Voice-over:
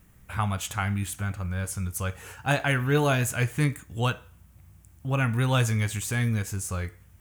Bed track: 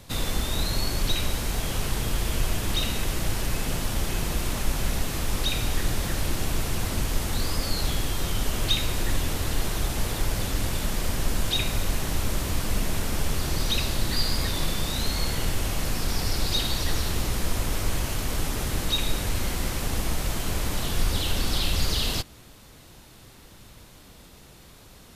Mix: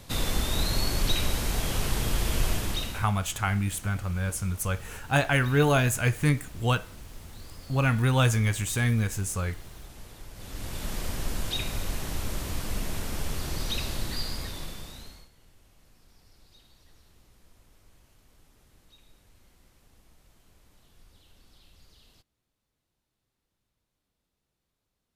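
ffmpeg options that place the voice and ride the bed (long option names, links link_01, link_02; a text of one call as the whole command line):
ffmpeg -i stem1.wav -i stem2.wav -filter_complex "[0:a]adelay=2650,volume=1dB[link_01];[1:a]volume=13dB,afade=type=out:start_time=2.5:duration=0.6:silence=0.11885,afade=type=in:start_time=10.34:duration=0.59:silence=0.211349,afade=type=out:start_time=13.95:duration=1.34:silence=0.0421697[link_02];[link_01][link_02]amix=inputs=2:normalize=0" out.wav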